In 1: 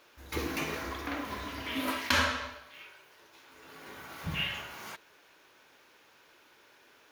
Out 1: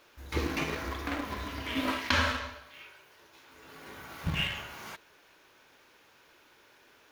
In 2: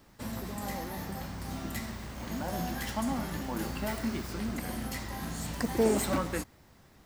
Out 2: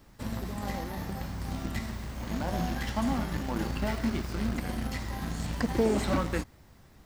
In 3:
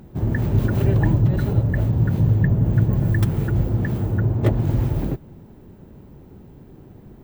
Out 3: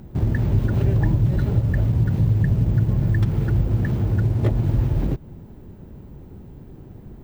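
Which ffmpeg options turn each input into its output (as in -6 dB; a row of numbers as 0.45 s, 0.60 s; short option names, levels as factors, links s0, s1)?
-filter_complex "[0:a]asplit=2[s0][s1];[s1]acrusher=bits=4:mix=0:aa=0.000001,volume=0.266[s2];[s0][s2]amix=inputs=2:normalize=0,acompressor=threshold=0.0631:ratio=2,lowshelf=f=110:g=7.5,acrossover=split=6100[s3][s4];[s4]acompressor=threshold=0.00316:ratio=4:attack=1:release=60[s5];[s3][s5]amix=inputs=2:normalize=0"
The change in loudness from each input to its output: +1.0 LU, +2.0 LU, -0.5 LU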